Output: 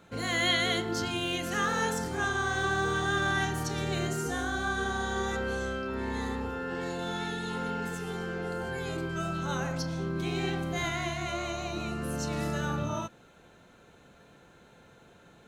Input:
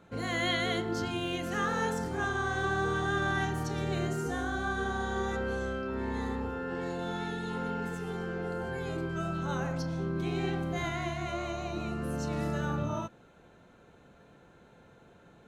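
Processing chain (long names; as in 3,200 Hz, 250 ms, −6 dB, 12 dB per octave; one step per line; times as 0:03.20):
high-shelf EQ 2,100 Hz +8 dB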